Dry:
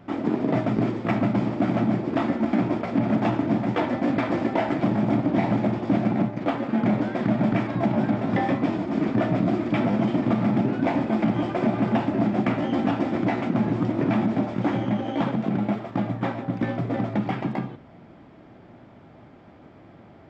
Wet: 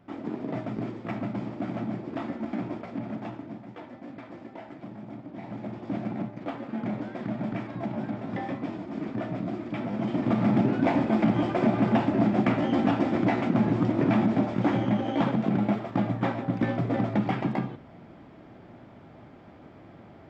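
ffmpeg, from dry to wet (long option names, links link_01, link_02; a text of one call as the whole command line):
ffmpeg -i in.wav -af "volume=9dB,afade=type=out:start_time=2.69:duration=0.94:silence=0.334965,afade=type=in:start_time=5.36:duration=0.61:silence=0.334965,afade=type=in:start_time=9.89:duration=0.63:silence=0.354813" out.wav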